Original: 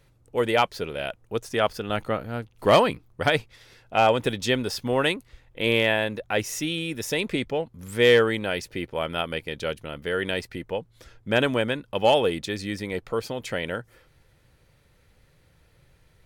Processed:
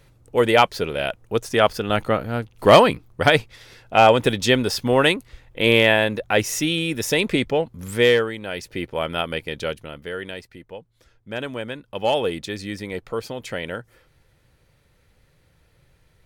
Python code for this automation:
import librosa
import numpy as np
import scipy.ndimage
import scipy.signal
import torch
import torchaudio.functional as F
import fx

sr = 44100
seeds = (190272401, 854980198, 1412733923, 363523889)

y = fx.gain(x, sr, db=fx.line((7.89, 6.0), (8.35, -5.5), (8.79, 3.0), (9.62, 3.0), (10.46, -8.0), (11.37, -8.0), (12.29, 0.0)))